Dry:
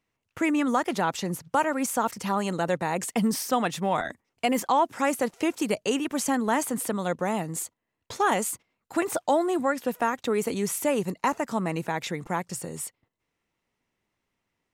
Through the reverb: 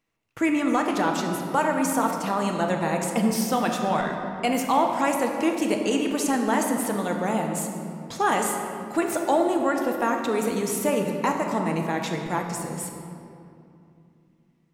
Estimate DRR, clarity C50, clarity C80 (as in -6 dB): 2.0 dB, 3.5 dB, 5.0 dB